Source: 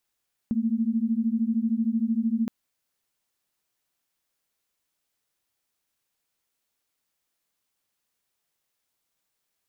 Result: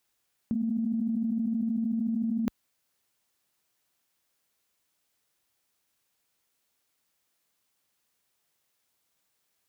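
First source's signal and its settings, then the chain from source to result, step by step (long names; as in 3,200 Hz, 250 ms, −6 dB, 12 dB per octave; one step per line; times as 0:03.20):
held notes A3/A#3 sine, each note −25 dBFS 1.97 s
high-pass filter 44 Hz
compressor whose output falls as the input rises −28 dBFS, ratio −1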